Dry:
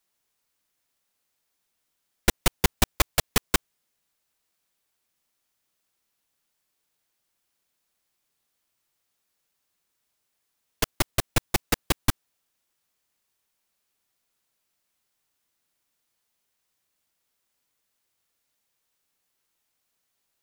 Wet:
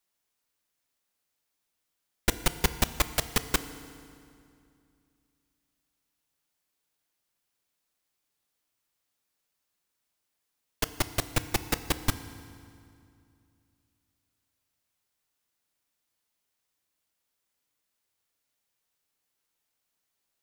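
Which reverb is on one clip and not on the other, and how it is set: FDN reverb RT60 2.4 s, low-frequency decay 1.25×, high-frequency decay 0.8×, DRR 11.5 dB; trim -4 dB

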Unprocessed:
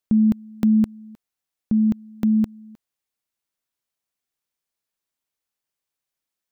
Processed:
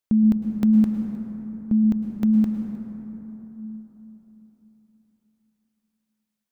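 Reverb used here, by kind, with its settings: plate-style reverb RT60 4.1 s, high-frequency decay 0.35×, pre-delay 95 ms, DRR 4 dB; trim -1.5 dB

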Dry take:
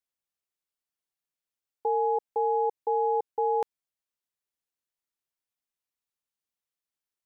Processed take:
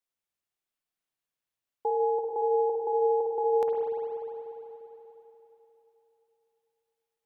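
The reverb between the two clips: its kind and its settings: spring tank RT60 3.5 s, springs 49/59 ms, chirp 25 ms, DRR -1.5 dB; trim -1 dB

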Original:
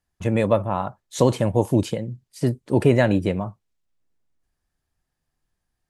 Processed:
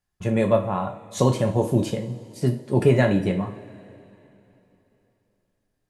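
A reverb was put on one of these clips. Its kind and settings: two-slope reverb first 0.36 s, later 3.3 s, from -21 dB, DRR 2.5 dB; trim -3 dB

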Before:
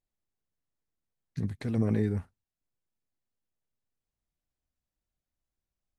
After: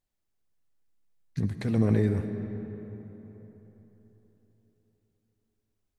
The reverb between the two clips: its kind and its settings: algorithmic reverb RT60 4 s, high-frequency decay 0.55×, pre-delay 40 ms, DRR 8 dB; trim +3.5 dB

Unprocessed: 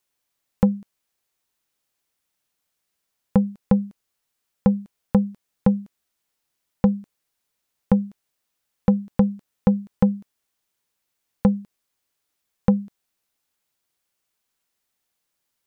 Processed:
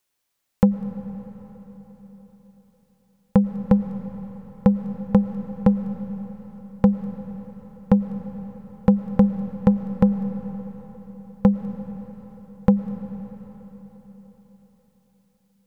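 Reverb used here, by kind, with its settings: algorithmic reverb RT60 4.6 s, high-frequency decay 0.85×, pre-delay 70 ms, DRR 10 dB; trim +1.5 dB

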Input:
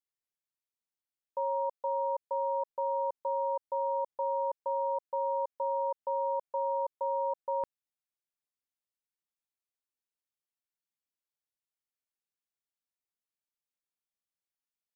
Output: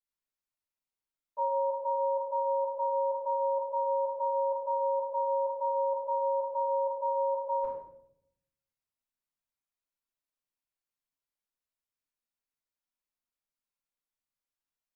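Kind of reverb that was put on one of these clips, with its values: simulated room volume 170 m³, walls mixed, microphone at 5.3 m; trim -15.5 dB

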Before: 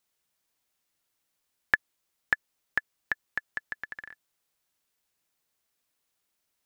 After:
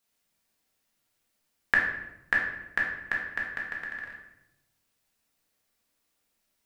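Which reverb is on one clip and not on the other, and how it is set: simulated room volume 290 m³, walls mixed, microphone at 1.7 m; trim -1.5 dB

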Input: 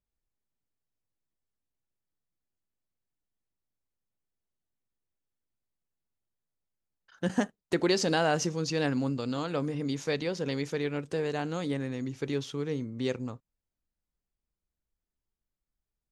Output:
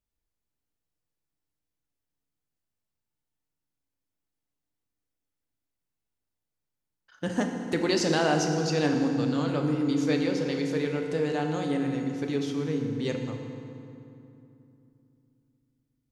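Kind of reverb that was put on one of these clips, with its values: FDN reverb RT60 2.8 s, low-frequency decay 1.4×, high-frequency decay 0.65×, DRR 2.5 dB

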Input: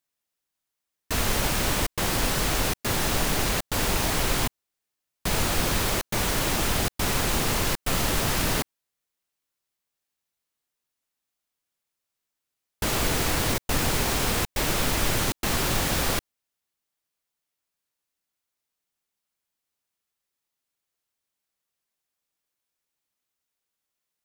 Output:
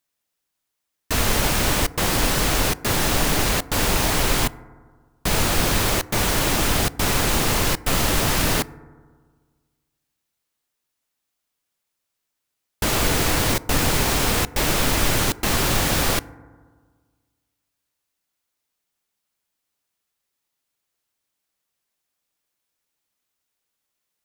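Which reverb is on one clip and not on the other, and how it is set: FDN reverb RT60 1.6 s, low-frequency decay 1.1×, high-frequency decay 0.25×, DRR 18 dB; trim +4.5 dB

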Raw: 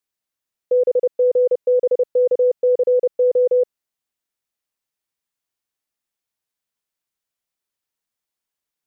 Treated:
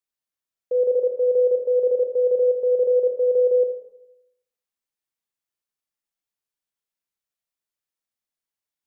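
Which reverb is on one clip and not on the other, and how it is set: Schroeder reverb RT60 0.86 s, combs from 28 ms, DRR 4.5 dB; trim -7 dB

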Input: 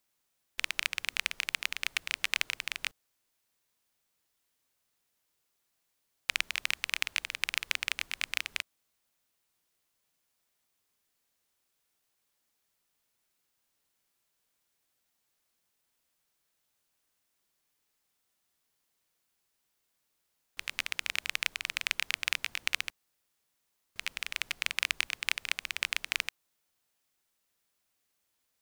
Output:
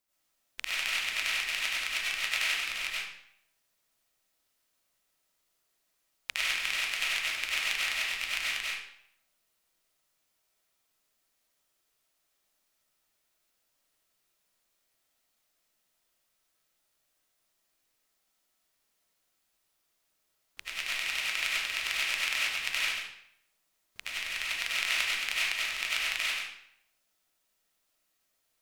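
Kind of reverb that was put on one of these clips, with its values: algorithmic reverb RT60 0.69 s, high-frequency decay 0.9×, pre-delay 55 ms, DRR -8 dB; trim -5.5 dB

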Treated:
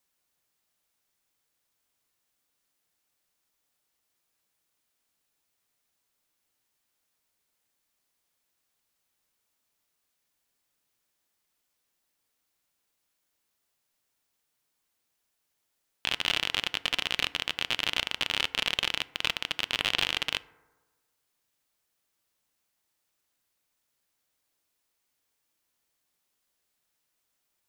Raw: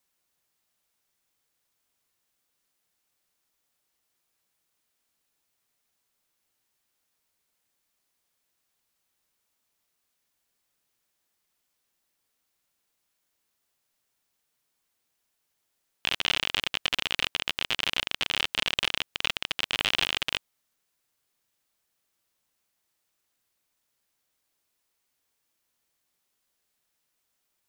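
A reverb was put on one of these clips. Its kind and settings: FDN reverb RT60 1.3 s, low-frequency decay 0.9×, high-frequency decay 0.3×, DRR 16.5 dB; trim -1 dB

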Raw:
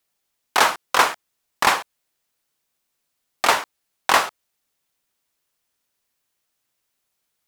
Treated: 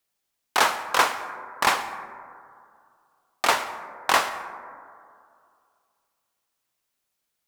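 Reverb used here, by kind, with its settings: plate-style reverb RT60 2.3 s, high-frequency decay 0.25×, pre-delay 95 ms, DRR 11.5 dB; trim -3.5 dB

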